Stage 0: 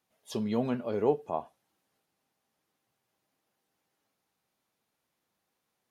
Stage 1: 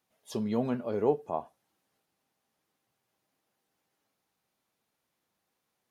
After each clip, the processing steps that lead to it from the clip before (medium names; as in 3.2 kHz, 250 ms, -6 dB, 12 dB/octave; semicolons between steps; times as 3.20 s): dynamic bell 3 kHz, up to -4 dB, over -57 dBFS, Q 1.2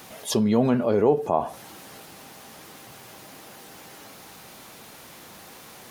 level flattener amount 50%; trim +5.5 dB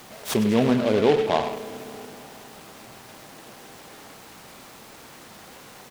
speakerphone echo 100 ms, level -7 dB; Schroeder reverb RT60 3.8 s, combs from 28 ms, DRR 13 dB; delay time shaken by noise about 2.2 kHz, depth 0.055 ms